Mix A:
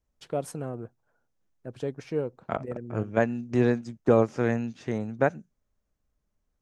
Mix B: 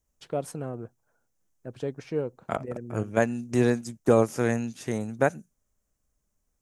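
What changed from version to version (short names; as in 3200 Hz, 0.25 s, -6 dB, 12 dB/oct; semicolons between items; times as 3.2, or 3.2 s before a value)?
second voice: remove air absorption 160 m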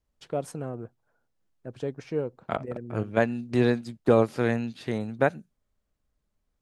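second voice: add resonant high shelf 5100 Hz -6.5 dB, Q 3; master: add high shelf 11000 Hz -7 dB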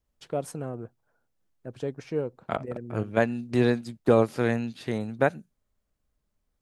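master: add high shelf 11000 Hz +7 dB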